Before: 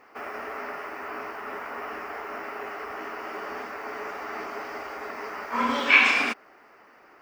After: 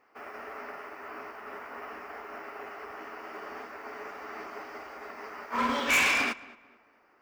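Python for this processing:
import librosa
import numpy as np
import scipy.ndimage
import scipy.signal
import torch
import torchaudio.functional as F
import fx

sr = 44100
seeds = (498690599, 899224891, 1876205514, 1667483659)

y = np.clip(x, -10.0 ** (-21.0 / 20.0), 10.0 ** (-21.0 / 20.0))
y = fx.echo_filtered(y, sr, ms=221, feedback_pct=46, hz=2500.0, wet_db=-12.5)
y = fx.upward_expand(y, sr, threshold_db=-44.0, expansion=1.5)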